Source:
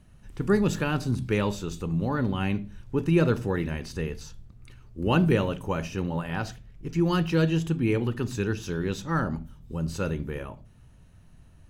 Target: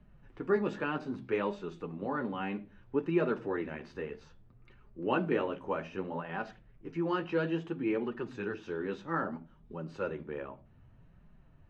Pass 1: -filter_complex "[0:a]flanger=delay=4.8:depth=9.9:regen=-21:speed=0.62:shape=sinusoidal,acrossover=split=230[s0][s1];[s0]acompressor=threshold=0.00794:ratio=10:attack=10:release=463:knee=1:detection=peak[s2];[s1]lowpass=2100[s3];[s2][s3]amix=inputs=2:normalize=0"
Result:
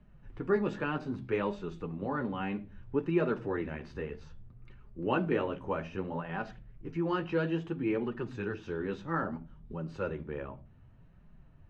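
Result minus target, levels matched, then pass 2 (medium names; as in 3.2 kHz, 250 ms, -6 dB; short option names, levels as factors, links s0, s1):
compression: peak gain reduction -10.5 dB
-filter_complex "[0:a]flanger=delay=4.8:depth=9.9:regen=-21:speed=0.62:shape=sinusoidal,acrossover=split=230[s0][s1];[s0]acompressor=threshold=0.00211:ratio=10:attack=10:release=463:knee=1:detection=peak[s2];[s1]lowpass=2100[s3];[s2][s3]amix=inputs=2:normalize=0"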